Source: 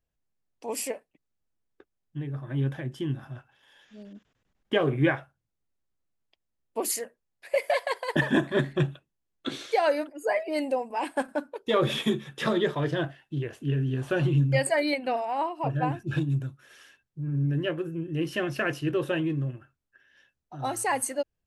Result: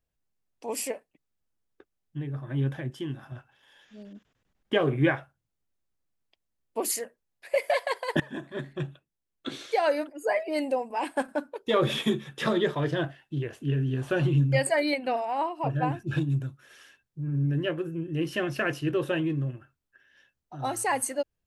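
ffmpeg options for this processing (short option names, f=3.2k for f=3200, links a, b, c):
-filter_complex "[0:a]asettb=1/sr,asplit=3[a][b][c];[a]atrim=end=2.904[d];[b]atrim=start=2.9:end=3.32,asetpts=PTS-STARTPTS,afade=t=in:d=0.004:c=qsin,afade=t=out:st=0.416:d=0.004:c=qsin,lowshelf=f=230:g=-7.5[e];[c]atrim=start=3.316[f];[d][e]acrossfade=d=0.004:c1=hsin:c2=qsin[g];[g][f]acrossfade=d=0.004:c1=qsin:c2=hsin,asplit=2[h][i];[h]atrim=end=8.2,asetpts=PTS-STARTPTS,afade=t=out:st=8.196:d=0.004:c=hsin:silence=0.125893[j];[i]atrim=start=8.2,asetpts=PTS-STARTPTS,afade=t=in:d=1.85:silence=0.125893[k];[j][k]concat=n=2:v=0:a=1"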